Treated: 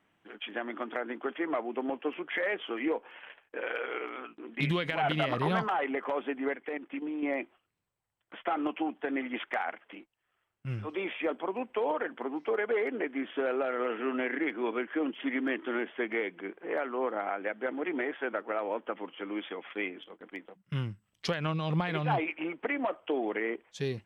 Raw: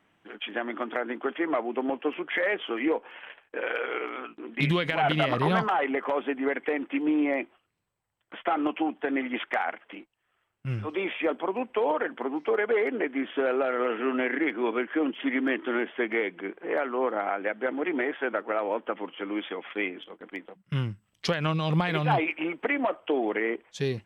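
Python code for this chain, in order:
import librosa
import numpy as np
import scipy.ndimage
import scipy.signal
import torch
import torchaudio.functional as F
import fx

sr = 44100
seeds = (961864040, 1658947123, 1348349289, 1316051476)

y = fx.level_steps(x, sr, step_db=10, at=(6.55, 7.23))
y = fx.high_shelf(y, sr, hz=5900.0, db=-9.0, at=(21.4, 22.81))
y = F.gain(torch.from_numpy(y), -4.5).numpy()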